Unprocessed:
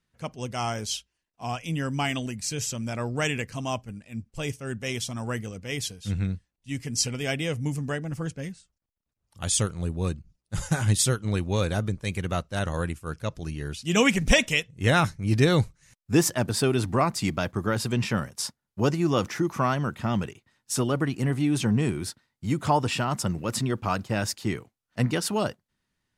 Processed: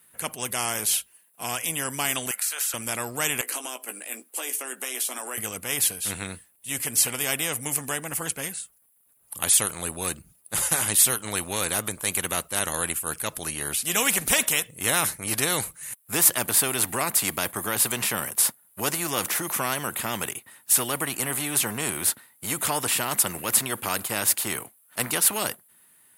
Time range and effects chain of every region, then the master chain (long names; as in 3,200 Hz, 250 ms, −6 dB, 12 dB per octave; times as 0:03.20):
0:02.31–0:02.74: high-pass filter 700 Hz 24 dB per octave + parametric band 1,400 Hz +14.5 dB 0.42 octaves + downward compressor 4 to 1, threshold −38 dBFS
0:03.41–0:05.38: Butterworth high-pass 290 Hz + downward compressor 4 to 1, threshold −40 dBFS + double-tracking delay 16 ms −8 dB
whole clip: high-pass filter 580 Hz 6 dB per octave; high shelf with overshoot 7,800 Hz +13.5 dB, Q 3; every bin compressed towards the loudest bin 2 to 1; level −3.5 dB